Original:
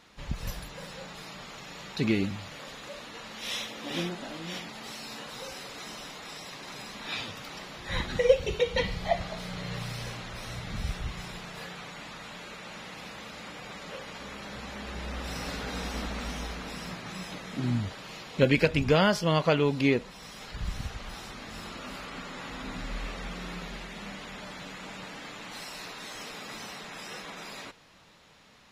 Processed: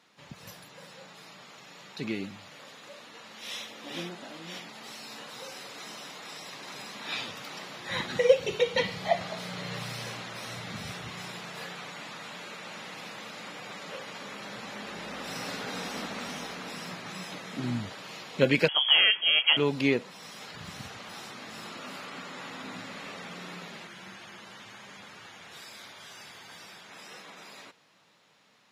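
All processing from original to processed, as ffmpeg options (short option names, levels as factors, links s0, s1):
-filter_complex "[0:a]asettb=1/sr,asplit=3[s0][s1][s2];[s0]atrim=end=18.684[s3];[s1]atrim=start=18.68:end=19.57,asetpts=PTS-STARTPTS,afade=t=in:d=0.004:c=qsin,afade=t=out:st=0.886:d=0.004:c=qsin,aemphasis=mode=reproduction:type=50fm,lowpass=f=2900:t=q:w=0.5098,lowpass=f=2900:t=q:w=0.6013,lowpass=f=2900:t=q:w=0.9,lowpass=f=2900:t=q:w=2.563,afreqshift=-3400[s4];[s2]atrim=start=19.566[s5];[s3][s4]acrossfade=d=0.004:c1=hsin:c2=qsin[s6];[s6][s5]acrossfade=d=0.004:c1=qsin:c2=hsin,asettb=1/sr,asplit=3[s7][s8][s9];[s7]atrim=end=23.874[s10];[s8]atrim=start=23.87:end=26.9,asetpts=PTS-STARTPTS,afade=t=in:d=0.004:c=qsin,afade=t=out:st=3.026:d=0.004:c=qsin,afreqshift=-390,equalizer=f=300:w=0.61:g=-5[s11];[s9]atrim=start=26.896[s12];[s10][s11]acrossfade=d=0.004:c1=hsin:c2=qsin[s13];[s13][s12]acrossfade=d=0.004:c1=qsin:c2=hsin,highpass=f=110:w=0.5412,highpass=f=110:w=1.3066,lowshelf=f=200:g=-6,dynaudnorm=f=550:g=21:m=3.76,volume=0.531"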